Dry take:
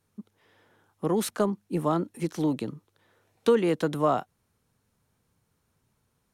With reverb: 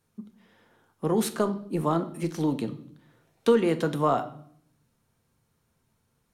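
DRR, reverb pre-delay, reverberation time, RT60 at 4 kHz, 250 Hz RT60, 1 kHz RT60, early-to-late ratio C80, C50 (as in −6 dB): 7.5 dB, 3 ms, 0.60 s, 0.60 s, 0.95 s, 0.55 s, 18.0 dB, 14.5 dB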